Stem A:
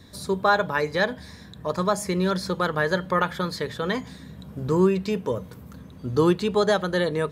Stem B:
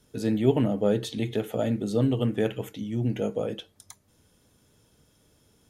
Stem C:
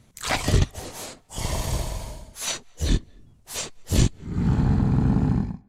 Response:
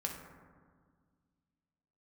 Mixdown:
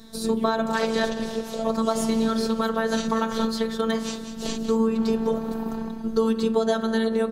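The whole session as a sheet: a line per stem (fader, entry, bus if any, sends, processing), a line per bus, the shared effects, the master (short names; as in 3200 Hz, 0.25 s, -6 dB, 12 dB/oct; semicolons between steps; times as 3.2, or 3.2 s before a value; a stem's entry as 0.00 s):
+2.5 dB, 0.00 s, send -6 dB, echo send -19.5 dB, dry
0.0 dB, 0.00 s, no send, no echo send, dry
+1.5 dB, 0.50 s, no send, echo send -10 dB, three-band isolator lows -15 dB, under 290 Hz, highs -13 dB, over 5800 Hz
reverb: on, RT60 1.7 s, pre-delay 3 ms
echo: echo 0.19 s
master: robotiser 224 Hz; bell 2100 Hz -7 dB 0.68 oct; compressor 3:1, threshold -19 dBFS, peak gain reduction 7 dB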